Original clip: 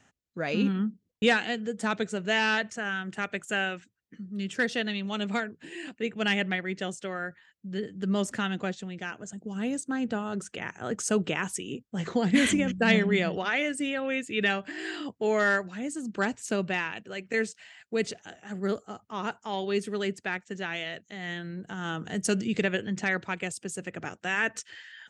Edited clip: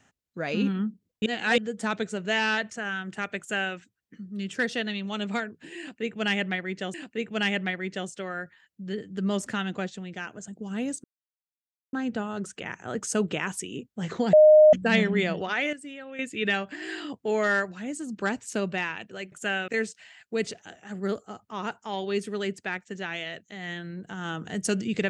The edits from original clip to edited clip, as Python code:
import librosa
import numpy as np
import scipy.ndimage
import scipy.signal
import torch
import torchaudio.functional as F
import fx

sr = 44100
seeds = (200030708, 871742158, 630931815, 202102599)

y = fx.edit(x, sr, fx.reverse_span(start_s=1.26, length_s=0.32),
    fx.duplicate(start_s=3.39, length_s=0.36, to_s=17.28),
    fx.repeat(start_s=5.79, length_s=1.15, count=2),
    fx.insert_silence(at_s=9.89, length_s=0.89),
    fx.bleep(start_s=12.29, length_s=0.4, hz=614.0, db=-10.5),
    fx.clip_gain(start_s=13.69, length_s=0.46, db=-10.5), tone=tone)